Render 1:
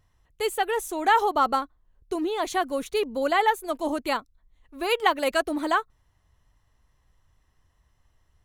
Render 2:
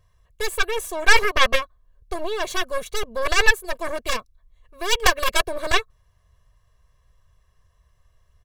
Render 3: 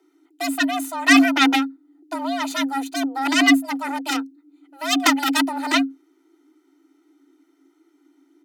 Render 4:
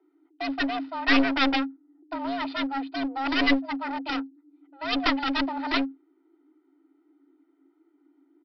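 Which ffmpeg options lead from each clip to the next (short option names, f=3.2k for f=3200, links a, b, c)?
-af "aeval=exprs='0.447*(cos(1*acos(clip(val(0)/0.447,-1,1)))-cos(1*PI/2))+0.0251*(cos(3*acos(clip(val(0)/0.447,-1,1)))-cos(3*PI/2))+0.0447*(cos(5*acos(clip(val(0)/0.447,-1,1)))-cos(5*PI/2))+0.1*(cos(6*acos(clip(val(0)/0.447,-1,1)))-cos(6*PI/2))+0.141*(cos(7*acos(clip(val(0)/0.447,-1,1)))-cos(7*PI/2))':c=same,aecho=1:1:1.8:0.88,volume=1.5dB"
-af "afreqshift=270"
-af "adynamicsmooth=sensitivity=6:basefreq=1.8k,aresample=11025,aeval=exprs='clip(val(0),-1,0.0708)':c=same,aresample=44100,volume=-4dB"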